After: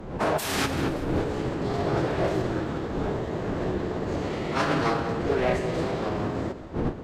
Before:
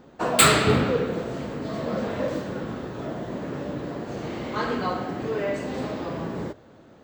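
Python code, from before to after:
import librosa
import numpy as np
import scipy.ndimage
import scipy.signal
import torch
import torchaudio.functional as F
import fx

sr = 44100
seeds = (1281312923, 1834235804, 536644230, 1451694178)

p1 = fx.self_delay(x, sr, depth_ms=0.63)
p2 = fx.dmg_wind(p1, sr, seeds[0], corner_hz=390.0, level_db=-33.0)
p3 = fx.over_compress(p2, sr, threshold_db=-25.0, ratio=-1.0)
p4 = fx.pitch_keep_formants(p3, sr, semitones=-8.0)
p5 = p4 + fx.echo_feedback(p4, sr, ms=190, feedback_pct=47, wet_db=-14, dry=0)
y = p5 * 10.0 ** (2.0 / 20.0)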